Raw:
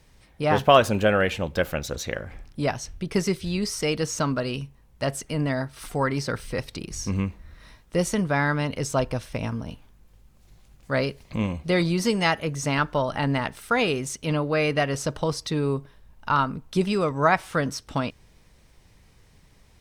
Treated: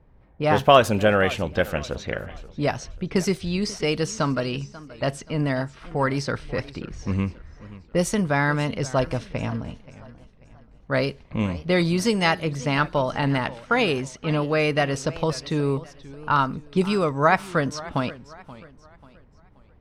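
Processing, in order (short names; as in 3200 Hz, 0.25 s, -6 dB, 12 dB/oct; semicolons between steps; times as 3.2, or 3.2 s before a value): low-pass opened by the level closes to 1000 Hz, open at -20 dBFS; warbling echo 0.534 s, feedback 37%, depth 166 cents, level -18 dB; gain +1.5 dB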